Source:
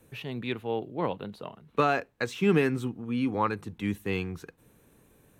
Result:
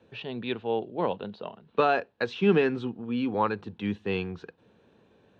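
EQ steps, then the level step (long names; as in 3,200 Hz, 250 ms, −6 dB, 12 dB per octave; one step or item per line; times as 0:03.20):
loudspeaker in its box 120–4,200 Hz, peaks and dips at 140 Hz −10 dB, 290 Hz −6 dB, 1,200 Hz −5 dB, 2,100 Hz −9 dB
+3.5 dB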